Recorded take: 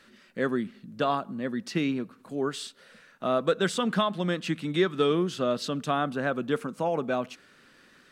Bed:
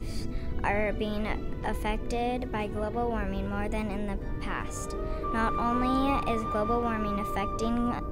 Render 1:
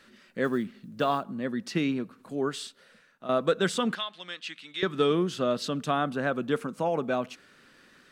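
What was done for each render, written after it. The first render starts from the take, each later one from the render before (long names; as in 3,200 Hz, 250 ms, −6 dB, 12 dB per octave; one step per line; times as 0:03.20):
0:00.44–0:01.24: one scale factor per block 7 bits
0:02.53–0:03.29: fade out, to −11.5 dB
0:03.95–0:04.83: resonant band-pass 3,500 Hz, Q 1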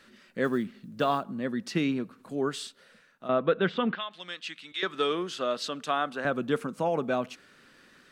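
0:03.28–0:04.11: low-pass filter 3,200 Hz 24 dB per octave
0:04.72–0:06.25: meter weighting curve A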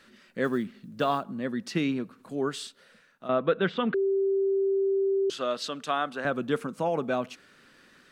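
0:03.94–0:05.30: beep over 390 Hz −22 dBFS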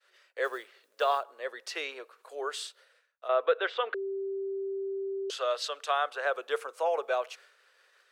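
downward expander −51 dBFS
Butterworth high-pass 440 Hz 48 dB per octave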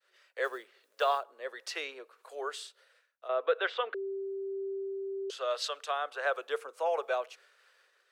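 two-band tremolo in antiphase 1.5 Hz, depth 50%, crossover 430 Hz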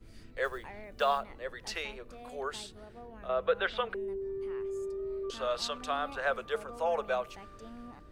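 mix in bed −19 dB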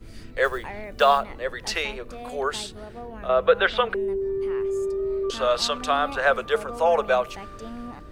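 level +10.5 dB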